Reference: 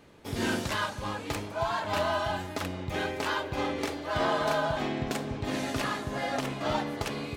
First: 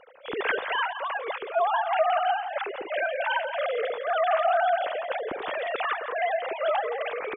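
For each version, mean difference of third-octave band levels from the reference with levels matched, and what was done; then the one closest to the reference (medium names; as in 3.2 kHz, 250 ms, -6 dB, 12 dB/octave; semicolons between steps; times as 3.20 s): 18.5 dB: formants replaced by sine waves; in parallel at +1 dB: compression, threshold -34 dBFS, peak gain reduction 13 dB; on the sum: echo from a far wall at 29 m, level -10 dB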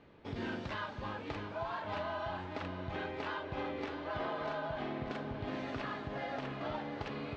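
5.5 dB: Bessel low-pass 3 kHz, order 4; compression 2.5:1, threshold -34 dBFS, peak gain reduction 7.5 dB; thinning echo 623 ms, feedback 67%, level -9.5 dB; trim -4 dB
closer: second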